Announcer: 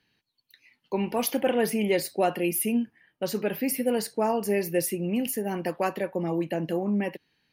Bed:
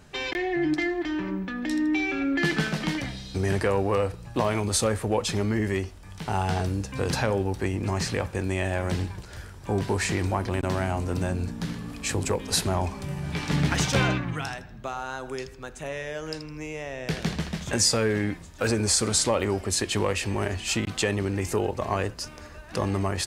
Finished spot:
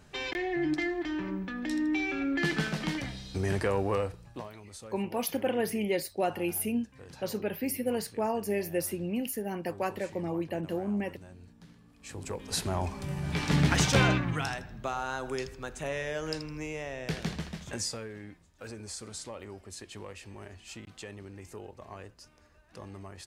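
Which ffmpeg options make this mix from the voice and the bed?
ffmpeg -i stem1.wav -i stem2.wav -filter_complex "[0:a]adelay=4000,volume=-5dB[link_01];[1:a]volume=17.5dB,afade=type=out:start_time=3.92:duration=0.58:silence=0.125893,afade=type=in:start_time=11.96:duration=1.48:silence=0.0794328,afade=type=out:start_time=16.37:duration=1.72:silence=0.125893[link_02];[link_01][link_02]amix=inputs=2:normalize=0" out.wav

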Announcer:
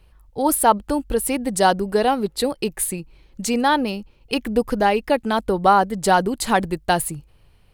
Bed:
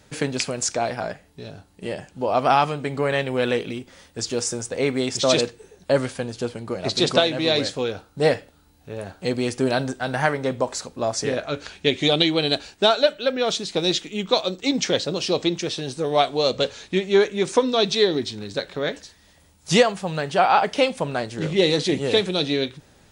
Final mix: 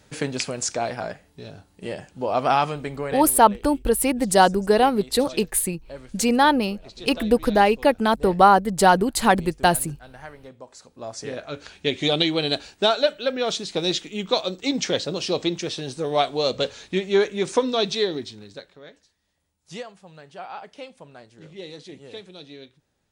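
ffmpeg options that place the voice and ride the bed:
ffmpeg -i stem1.wav -i stem2.wav -filter_complex "[0:a]adelay=2750,volume=1dB[link_01];[1:a]volume=15.5dB,afade=type=out:start_time=2.73:duration=0.65:silence=0.133352,afade=type=in:start_time=10.67:duration=1.48:silence=0.133352,afade=type=out:start_time=17.73:duration=1.05:silence=0.133352[link_02];[link_01][link_02]amix=inputs=2:normalize=0" out.wav

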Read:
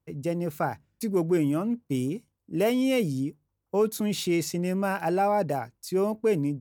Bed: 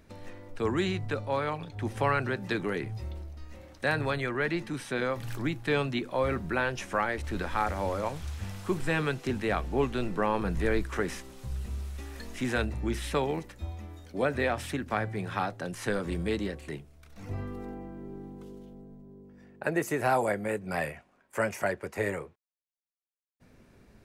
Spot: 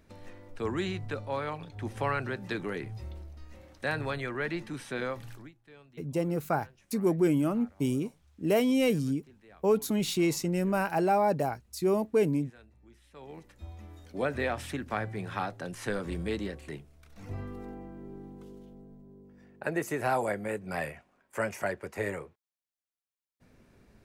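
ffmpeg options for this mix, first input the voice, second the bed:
ffmpeg -i stem1.wav -i stem2.wav -filter_complex "[0:a]adelay=5900,volume=-1dB[link_01];[1:a]volume=21dB,afade=type=out:start_time=5.08:duration=0.44:silence=0.0668344,afade=type=in:start_time=13.13:duration=0.93:silence=0.0595662[link_02];[link_01][link_02]amix=inputs=2:normalize=0" out.wav

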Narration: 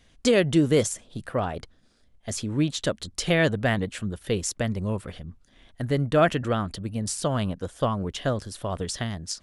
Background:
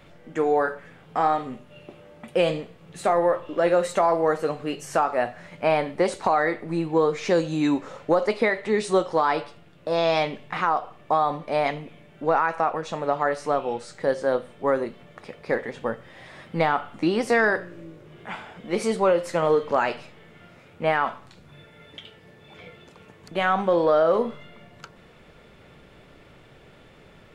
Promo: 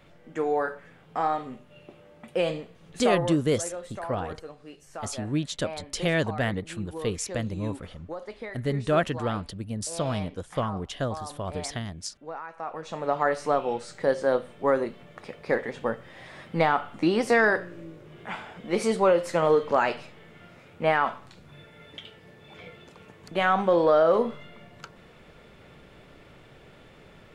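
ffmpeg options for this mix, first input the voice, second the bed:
ffmpeg -i stem1.wav -i stem2.wav -filter_complex "[0:a]adelay=2750,volume=-3.5dB[link_01];[1:a]volume=11.5dB,afade=type=out:start_time=3.12:duration=0.24:silence=0.251189,afade=type=in:start_time=12.55:duration=0.7:silence=0.158489[link_02];[link_01][link_02]amix=inputs=2:normalize=0" out.wav

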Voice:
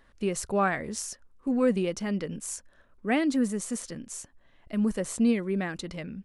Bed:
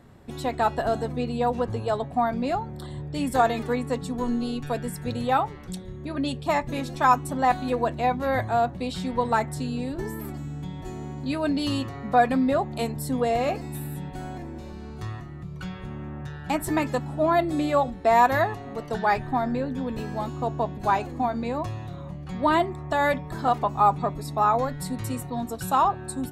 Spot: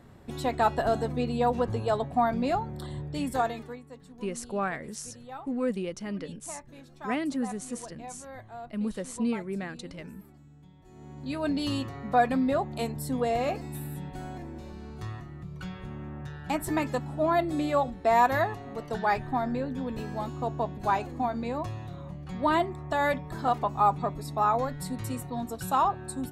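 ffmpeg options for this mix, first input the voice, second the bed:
ffmpeg -i stem1.wav -i stem2.wav -filter_complex "[0:a]adelay=4000,volume=-5dB[link_01];[1:a]volume=15dB,afade=type=out:start_time=2.94:duration=0.87:silence=0.11885,afade=type=in:start_time=10.87:duration=0.61:silence=0.158489[link_02];[link_01][link_02]amix=inputs=2:normalize=0" out.wav

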